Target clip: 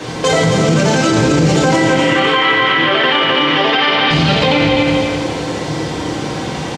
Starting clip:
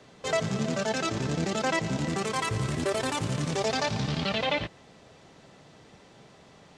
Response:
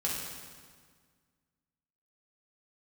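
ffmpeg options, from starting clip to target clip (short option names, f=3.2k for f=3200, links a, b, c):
-filter_complex "[0:a]acompressor=threshold=-41dB:ratio=2.5,asettb=1/sr,asplit=3[a][b][c];[a]atrim=end=1.854[d];[b]atrim=start=1.85:end=4.11,asetpts=PTS-STARTPTS,afade=t=in:d=0.004:c=qsin,afade=t=out:st=2.256:d=0.004:c=qsin,highpass=430,equalizer=f=450:t=q:w=4:g=-4,equalizer=f=850:t=q:w=4:g=-4,equalizer=f=1.2k:t=q:w=4:g=5,equalizer=f=1.9k:t=q:w=4:g=8,equalizer=f=3.1k:t=q:w=4:g=10,lowpass=f=3.5k:w=0.5412,lowpass=f=3.5k:w=1.3066[e];[c]atrim=start=4.106[f];[d][e]acrossfade=d=0.004:c1=hsin:c2=qsin[g];[g][f]acrossfade=d=0.004:c1=qsin:c2=hsin,aecho=1:1:254|508|762|1016:0.473|0.175|0.0648|0.024[h];[1:a]atrim=start_sample=2205,asetrate=83790,aresample=44100[i];[h][i]afir=irnorm=-1:irlink=0,alimiter=level_in=33dB:limit=-1dB:release=50:level=0:latency=1,volume=-3dB"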